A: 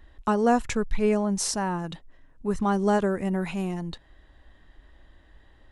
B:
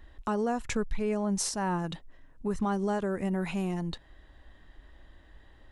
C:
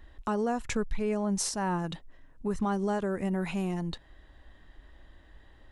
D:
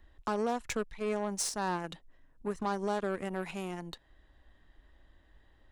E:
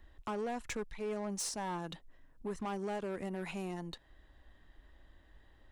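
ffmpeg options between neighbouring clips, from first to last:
ffmpeg -i in.wav -af "alimiter=limit=-21dB:level=0:latency=1:release=271" out.wav
ffmpeg -i in.wav -af anull out.wav
ffmpeg -i in.wav -filter_complex "[0:a]acrossover=split=260|3800[link_01][link_02][link_03];[link_01]acompressor=threshold=-42dB:ratio=4[link_04];[link_04][link_02][link_03]amix=inputs=3:normalize=0,aeval=exprs='0.112*(cos(1*acos(clip(val(0)/0.112,-1,1)))-cos(1*PI/2))+0.00631*(cos(5*acos(clip(val(0)/0.112,-1,1)))-cos(5*PI/2))+0.0126*(cos(7*acos(clip(val(0)/0.112,-1,1)))-cos(7*PI/2))':channel_layout=same,volume=-1.5dB" out.wav
ffmpeg -i in.wav -af "asoftclip=type=tanh:threshold=-33.5dB,volume=1dB" out.wav

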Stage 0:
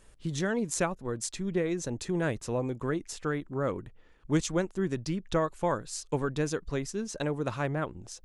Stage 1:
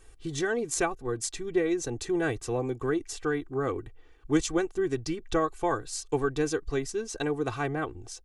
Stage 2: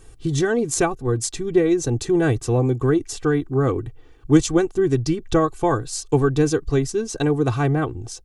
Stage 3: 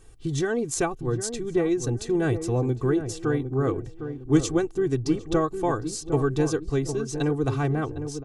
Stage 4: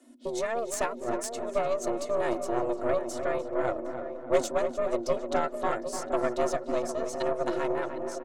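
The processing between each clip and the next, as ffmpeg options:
ffmpeg -i in.wav -af "aecho=1:1:2.6:0.8" out.wav
ffmpeg -i in.wav -af "equalizer=frequency=125:width_type=o:width=1:gain=9,equalizer=frequency=250:width_type=o:width=1:gain=3,equalizer=frequency=2000:width_type=o:width=1:gain=-4,volume=7dB" out.wav
ffmpeg -i in.wav -filter_complex "[0:a]asplit=2[link_01][link_02];[link_02]adelay=757,lowpass=frequency=840:poles=1,volume=-8dB,asplit=2[link_03][link_04];[link_04]adelay=757,lowpass=frequency=840:poles=1,volume=0.37,asplit=2[link_05][link_06];[link_06]adelay=757,lowpass=frequency=840:poles=1,volume=0.37,asplit=2[link_07][link_08];[link_08]adelay=757,lowpass=frequency=840:poles=1,volume=0.37[link_09];[link_01][link_03][link_05][link_07][link_09]amix=inputs=5:normalize=0,volume=-5.5dB" out.wav
ffmpeg -i in.wav -filter_complex "[0:a]afreqshift=230,aeval=exprs='0.447*(cos(1*acos(clip(val(0)/0.447,-1,1)))-cos(1*PI/2))+0.0501*(cos(6*acos(clip(val(0)/0.447,-1,1)))-cos(6*PI/2))':channel_layout=same,asplit=2[link_01][link_02];[link_02]adelay=298,lowpass=frequency=2000:poles=1,volume=-8dB,asplit=2[link_03][link_04];[link_04]adelay=298,lowpass=frequency=2000:poles=1,volume=0.49,asplit=2[link_05][link_06];[link_06]adelay=298,lowpass=frequency=2000:poles=1,volume=0.49,asplit=2[link_07][link_08];[link_08]adelay=298,lowpass=frequency=2000:poles=1,volume=0.49,asplit=2[link_09][link_10];[link_10]adelay=298,lowpass=frequency=2000:poles=1,volume=0.49,asplit=2[link_11][link_12];[link_12]adelay=298,lowpass=frequency=2000:poles=1,volume=0.49[link_13];[link_01][link_03][link_05][link_07][link_09][link_11][link_13]amix=inputs=7:normalize=0,volume=-5.5dB" out.wav

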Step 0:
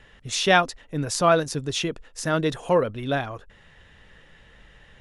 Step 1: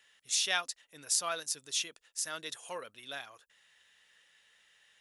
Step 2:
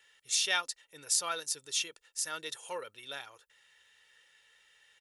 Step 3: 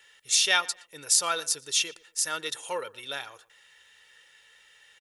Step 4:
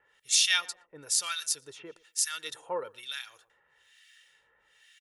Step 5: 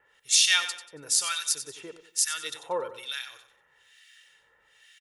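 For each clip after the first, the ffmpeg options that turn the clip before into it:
ffmpeg -i in.wav -af "aderivative" out.wav
ffmpeg -i in.wav -af "aecho=1:1:2.2:0.47" out.wav
ffmpeg -i in.wav -filter_complex "[0:a]asplit=2[link_01][link_02];[link_02]adelay=118,lowpass=frequency=3200:poles=1,volume=-20.5dB,asplit=2[link_03][link_04];[link_04]adelay=118,lowpass=frequency=3200:poles=1,volume=0.27[link_05];[link_01][link_03][link_05]amix=inputs=3:normalize=0,volume=7dB" out.wav
ffmpeg -i in.wav -filter_complex "[0:a]acrossover=split=1500[link_01][link_02];[link_01]aeval=exprs='val(0)*(1-1/2+1/2*cos(2*PI*1.1*n/s))':channel_layout=same[link_03];[link_02]aeval=exprs='val(0)*(1-1/2-1/2*cos(2*PI*1.1*n/s))':channel_layout=same[link_04];[link_03][link_04]amix=inputs=2:normalize=0" out.wav
ffmpeg -i in.wav -af "aecho=1:1:93|186|279|372:0.266|0.0931|0.0326|0.0114,volume=3dB" out.wav

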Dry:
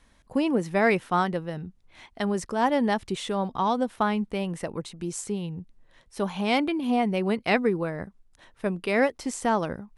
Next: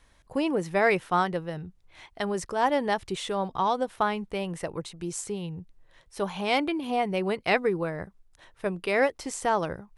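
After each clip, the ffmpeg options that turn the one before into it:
ffmpeg -i in.wav -af "equalizer=frequency=230:width=3.5:gain=-10.5" out.wav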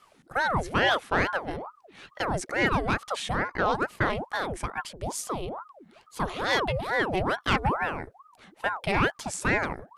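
ffmpeg -i in.wav -af "asoftclip=type=tanh:threshold=-16dB,aeval=exprs='val(0)*sin(2*PI*720*n/s+720*0.75/2.3*sin(2*PI*2.3*n/s))':channel_layout=same,volume=4dB" out.wav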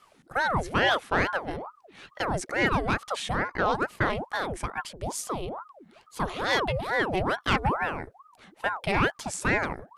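ffmpeg -i in.wav -af anull out.wav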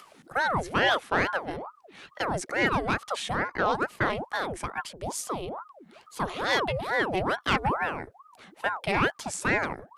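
ffmpeg -i in.wav -filter_complex "[0:a]lowshelf=frequency=94:gain=-7.5,acrossover=split=100[link_01][link_02];[link_02]acompressor=mode=upward:threshold=-45dB:ratio=2.5[link_03];[link_01][link_03]amix=inputs=2:normalize=0" out.wav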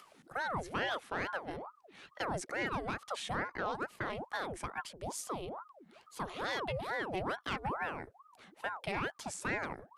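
ffmpeg -i in.wav -af "alimiter=limit=-19dB:level=0:latency=1:release=197,volume=-7dB" out.wav

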